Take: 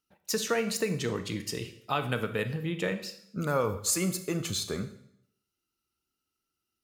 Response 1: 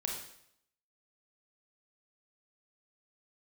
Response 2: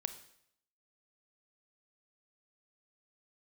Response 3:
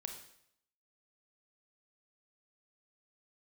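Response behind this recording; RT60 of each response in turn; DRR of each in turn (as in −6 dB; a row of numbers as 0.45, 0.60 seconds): 2; 0.70, 0.70, 0.70 seconds; −0.5, 10.0, 4.0 decibels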